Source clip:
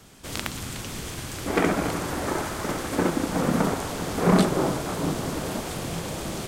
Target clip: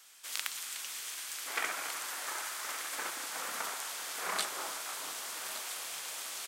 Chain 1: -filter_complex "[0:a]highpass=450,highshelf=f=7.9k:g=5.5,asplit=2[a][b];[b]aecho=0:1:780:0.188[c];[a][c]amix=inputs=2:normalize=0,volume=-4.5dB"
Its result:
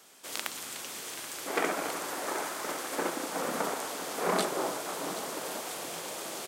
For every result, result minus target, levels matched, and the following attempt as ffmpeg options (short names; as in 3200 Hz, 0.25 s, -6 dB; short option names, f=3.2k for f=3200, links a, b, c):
500 Hz band +12.0 dB; echo 0.386 s early
-filter_complex "[0:a]highpass=1.4k,highshelf=f=7.9k:g=5.5,asplit=2[a][b];[b]aecho=0:1:780:0.188[c];[a][c]amix=inputs=2:normalize=0,volume=-4.5dB"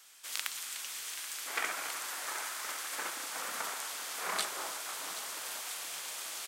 echo 0.386 s early
-filter_complex "[0:a]highpass=1.4k,highshelf=f=7.9k:g=5.5,asplit=2[a][b];[b]aecho=0:1:1166:0.188[c];[a][c]amix=inputs=2:normalize=0,volume=-4.5dB"